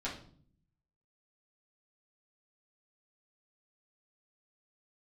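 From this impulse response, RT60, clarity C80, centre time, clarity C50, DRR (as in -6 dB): 0.50 s, 12.5 dB, 25 ms, 7.5 dB, -8.0 dB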